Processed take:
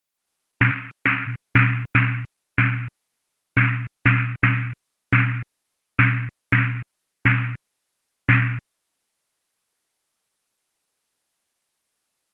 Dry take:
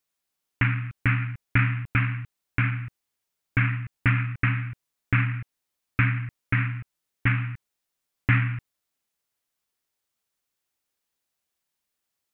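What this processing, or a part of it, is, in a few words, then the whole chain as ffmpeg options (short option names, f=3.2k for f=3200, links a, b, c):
video call: -filter_complex "[0:a]asplit=3[a][b][c];[a]afade=t=out:st=0.7:d=0.02[d];[b]highpass=250,afade=t=in:st=0.7:d=0.02,afade=t=out:st=1.26:d=0.02[e];[c]afade=t=in:st=1.26:d=0.02[f];[d][e][f]amix=inputs=3:normalize=0,highpass=f=140:p=1,dynaudnorm=f=140:g=3:m=9.5dB" -ar 48000 -c:a libopus -b:a 20k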